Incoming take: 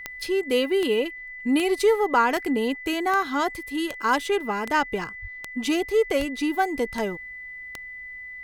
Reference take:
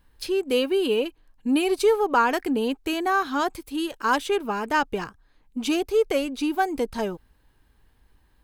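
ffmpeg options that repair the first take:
-filter_complex "[0:a]adeclick=t=4,bandreject=f=2k:w=30,asplit=3[a][b][c];[a]afade=t=out:st=5.21:d=0.02[d];[b]highpass=f=140:w=0.5412,highpass=f=140:w=1.3066,afade=t=in:st=5.21:d=0.02,afade=t=out:st=5.33:d=0.02[e];[c]afade=t=in:st=5.33:d=0.02[f];[d][e][f]amix=inputs=3:normalize=0,asplit=3[g][h][i];[g]afade=t=out:st=6.18:d=0.02[j];[h]highpass=f=140:w=0.5412,highpass=f=140:w=1.3066,afade=t=in:st=6.18:d=0.02,afade=t=out:st=6.3:d=0.02[k];[i]afade=t=in:st=6.3:d=0.02[l];[j][k][l]amix=inputs=3:normalize=0"

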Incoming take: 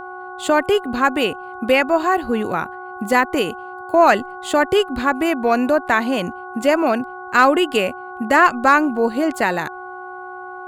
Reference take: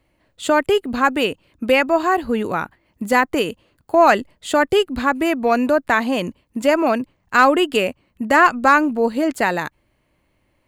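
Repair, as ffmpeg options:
-af "bandreject=f=367.2:t=h:w=4,bandreject=f=734.4:t=h:w=4,bandreject=f=1.1016k:t=h:w=4,bandreject=f=1.4688k:t=h:w=4,bandreject=f=800:w=30"

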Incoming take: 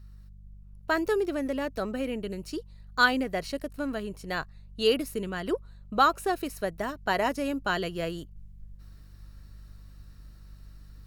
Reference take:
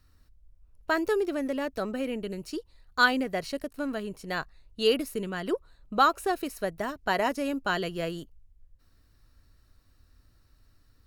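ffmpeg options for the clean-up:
-af "bandreject=f=49.2:t=h:w=4,bandreject=f=98.4:t=h:w=4,bandreject=f=147.6:t=h:w=4,bandreject=f=196.8:t=h:w=4,asetnsamples=n=441:p=0,asendcmd='8.36 volume volume -6.5dB',volume=0dB"

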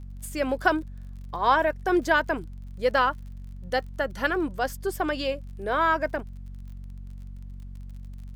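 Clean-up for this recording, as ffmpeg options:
-af "adeclick=t=4,bandreject=f=46.8:t=h:w=4,bandreject=f=93.6:t=h:w=4,bandreject=f=140.4:t=h:w=4,bandreject=f=187.2:t=h:w=4,bandreject=f=234:t=h:w=4,agate=range=-21dB:threshold=-31dB"

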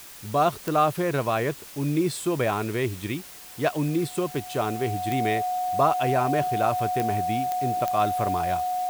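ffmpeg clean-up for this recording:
-af "adeclick=t=4,bandreject=f=730:w=30,afftdn=nr=30:nf=-41"

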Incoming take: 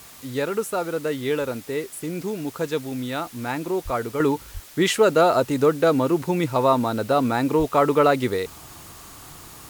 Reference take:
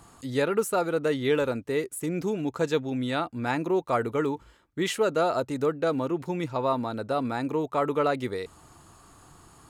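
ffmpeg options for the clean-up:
-filter_complex "[0:a]asplit=3[a][b][c];[a]afade=t=out:st=3.84:d=0.02[d];[b]highpass=f=140:w=0.5412,highpass=f=140:w=1.3066,afade=t=in:st=3.84:d=0.02,afade=t=out:st=3.96:d=0.02[e];[c]afade=t=in:st=3.96:d=0.02[f];[d][e][f]amix=inputs=3:normalize=0,asplit=3[g][h][i];[g]afade=t=out:st=4.53:d=0.02[j];[h]highpass=f=140:w=0.5412,highpass=f=140:w=1.3066,afade=t=in:st=4.53:d=0.02,afade=t=out:st=4.65:d=0.02[k];[i]afade=t=in:st=4.65:d=0.02[l];[j][k][l]amix=inputs=3:normalize=0,asplit=3[m][n][o];[m]afade=t=out:st=7.58:d=0.02[p];[n]highpass=f=140:w=0.5412,highpass=f=140:w=1.3066,afade=t=in:st=7.58:d=0.02,afade=t=out:st=7.7:d=0.02[q];[o]afade=t=in:st=7.7:d=0.02[r];[p][q][r]amix=inputs=3:normalize=0,afwtdn=0.0056,asetnsamples=n=441:p=0,asendcmd='4.2 volume volume -7.5dB',volume=0dB"

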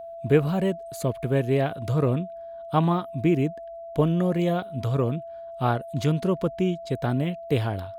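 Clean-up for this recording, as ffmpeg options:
-af "bandreject=f=670:w=30"

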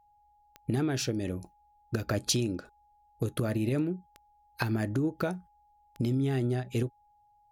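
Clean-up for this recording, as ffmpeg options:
-af "adeclick=t=4,bandreject=f=830:w=30"

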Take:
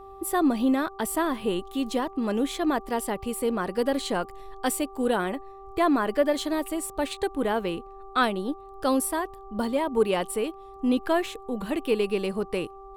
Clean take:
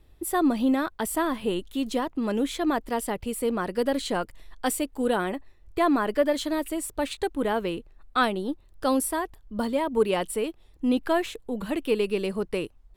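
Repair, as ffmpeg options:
-af "bandreject=f=390.6:t=h:w=4,bandreject=f=781.2:t=h:w=4,bandreject=f=1.1718k:t=h:w=4"

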